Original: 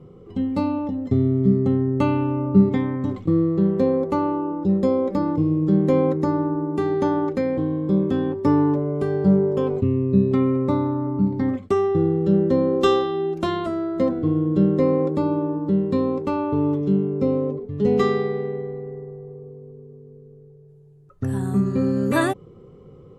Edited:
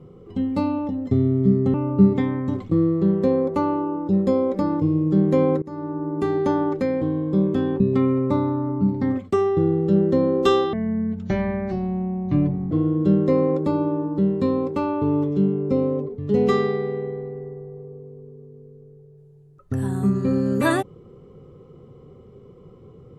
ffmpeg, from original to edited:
-filter_complex "[0:a]asplit=6[s0][s1][s2][s3][s4][s5];[s0]atrim=end=1.742[s6];[s1]atrim=start=2.298:end=6.18,asetpts=PTS-STARTPTS,afade=t=out:st=3.878:d=0.004:c=hsin:silence=0.0794328[s7];[s2]atrim=start=6.18:end=8.362,asetpts=PTS-STARTPTS,afade=t=in:d=0.59:silence=0.0794328[s8];[s3]atrim=start=10.178:end=13.114[s9];[s4]atrim=start=13.11:end=14.22,asetpts=PTS-STARTPTS,asetrate=24696,aresample=44100,atrim=end_sample=87412,asetpts=PTS-STARTPTS[s10];[s5]atrim=start=14.216[s11];[s7][s8]concat=n=2:v=0:a=1[s12];[s6][s12]acrossfade=d=0.004:c1=hsin:c2=hsin[s13];[s13][s9]acrossfade=d=0.004:c1=hsin:c2=hsin[s14];[s14][s10]acrossfade=d=0.004:c1=hsin:c2=hsin[s15];[s15][s11]acrossfade=d=0.004:c1=hsin:c2=hsin"

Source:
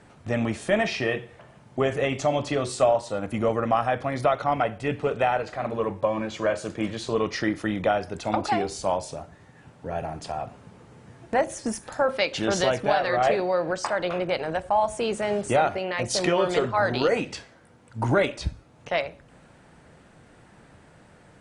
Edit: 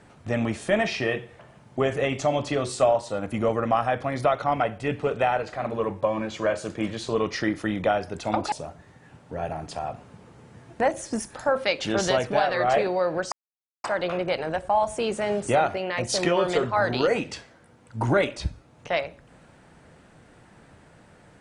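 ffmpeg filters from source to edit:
-filter_complex "[0:a]asplit=3[s0][s1][s2];[s0]atrim=end=8.522[s3];[s1]atrim=start=9.048:end=13.85,asetpts=PTS-STARTPTS,afade=t=out:st=4.798:d=0.004:c=hsin,apad=pad_dur=0.52[s4];[s2]atrim=start=13.85,asetpts=PTS-STARTPTS,afade=t=in:d=0.004:c=hsin[s5];[s4][s5]concat=n=2:v=0:a=1[s6];[s3][s6]acrossfade=d=0.004:c1=hsin:c2=hsin"

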